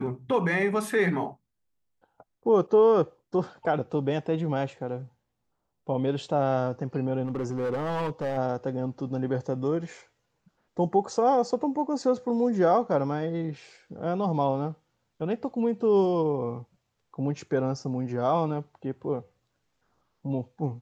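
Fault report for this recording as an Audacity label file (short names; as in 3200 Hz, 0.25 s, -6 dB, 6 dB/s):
7.240000	8.380000	clipped -25 dBFS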